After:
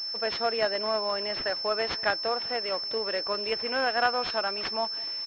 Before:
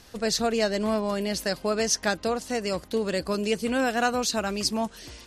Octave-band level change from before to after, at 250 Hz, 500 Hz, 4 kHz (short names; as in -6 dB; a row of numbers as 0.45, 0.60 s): -14.5, -3.0, +3.5 dB